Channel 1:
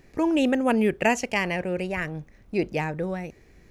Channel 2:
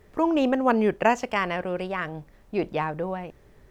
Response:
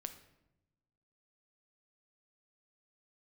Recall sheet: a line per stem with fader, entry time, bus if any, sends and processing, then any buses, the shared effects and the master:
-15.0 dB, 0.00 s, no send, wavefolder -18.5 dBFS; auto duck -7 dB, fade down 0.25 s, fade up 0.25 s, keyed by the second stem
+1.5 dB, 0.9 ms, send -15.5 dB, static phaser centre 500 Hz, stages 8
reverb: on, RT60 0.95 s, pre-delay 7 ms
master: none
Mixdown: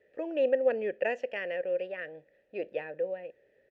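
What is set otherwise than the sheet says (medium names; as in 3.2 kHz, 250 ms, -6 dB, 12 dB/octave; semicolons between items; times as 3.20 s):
stem 2: missing static phaser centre 500 Hz, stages 8; master: extra vowel filter e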